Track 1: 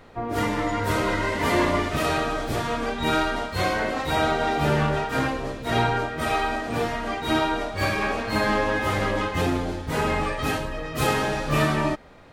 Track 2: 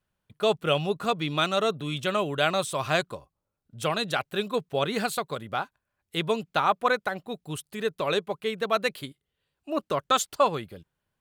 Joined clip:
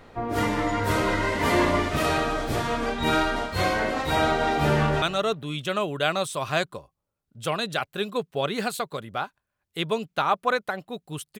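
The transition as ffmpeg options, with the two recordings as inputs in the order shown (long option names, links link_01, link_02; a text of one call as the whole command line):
ffmpeg -i cue0.wav -i cue1.wav -filter_complex "[0:a]apad=whole_dur=11.39,atrim=end=11.39,atrim=end=5.022[link_01];[1:a]atrim=start=1.398:end=7.77[link_02];[link_01][link_02]acrossfade=duration=0.004:curve1=hsin:curve2=hsin,asplit=2[link_03][link_04];[link_04]afade=type=in:start_time=4.76:duration=0.01,afade=type=out:start_time=5.02:duration=0.01,aecho=0:1:160|320|480:0.141254|0.0423761|0.0127128[link_05];[link_03][link_05]amix=inputs=2:normalize=0" out.wav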